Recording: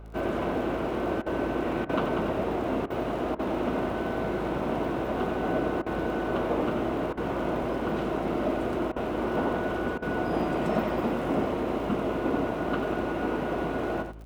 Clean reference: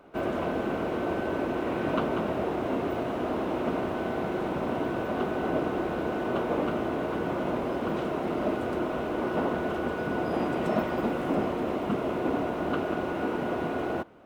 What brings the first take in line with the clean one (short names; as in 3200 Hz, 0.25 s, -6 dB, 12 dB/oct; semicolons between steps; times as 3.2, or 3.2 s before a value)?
de-click; de-hum 54.3 Hz, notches 8; interpolate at 1.22/1.85/2.86/3.35/5.82/7.13/8.92/9.98, 41 ms; inverse comb 91 ms -8 dB